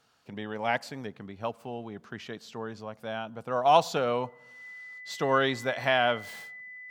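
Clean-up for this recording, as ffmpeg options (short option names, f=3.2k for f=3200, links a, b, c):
-af "bandreject=f=2k:w=30"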